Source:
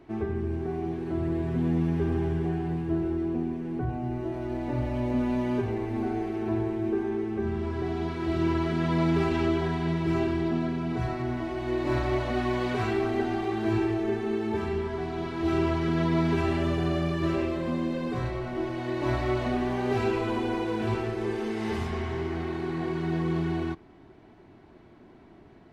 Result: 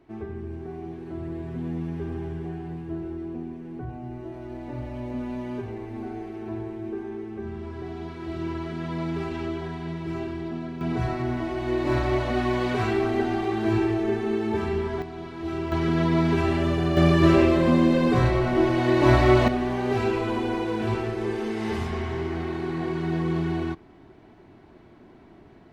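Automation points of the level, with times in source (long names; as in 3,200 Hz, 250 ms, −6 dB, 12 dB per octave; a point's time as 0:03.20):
−5 dB
from 0:10.81 +3 dB
from 0:15.02 −4.5 dB
from 0:15.72 +3 dB
from 0:16.97 +10 dB
from 0:19.48 +2 dB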